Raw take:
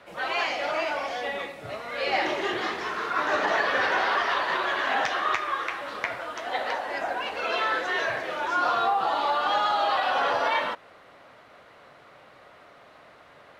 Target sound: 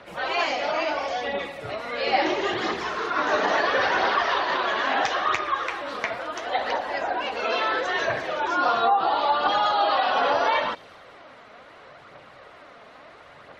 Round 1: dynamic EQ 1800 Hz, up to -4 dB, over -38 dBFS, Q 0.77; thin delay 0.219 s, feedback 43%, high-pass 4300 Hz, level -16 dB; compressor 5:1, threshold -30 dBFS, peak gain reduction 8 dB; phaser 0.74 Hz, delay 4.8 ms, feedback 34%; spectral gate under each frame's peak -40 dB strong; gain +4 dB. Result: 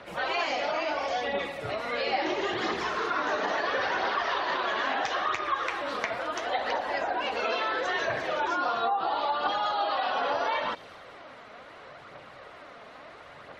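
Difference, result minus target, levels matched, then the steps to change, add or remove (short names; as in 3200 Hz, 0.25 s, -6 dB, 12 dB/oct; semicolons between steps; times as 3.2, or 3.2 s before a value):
compressor: peak gain reduction +8 dB
remove: compressor 5:1, threshold -30 dBFS, peak gain reduction 8 dB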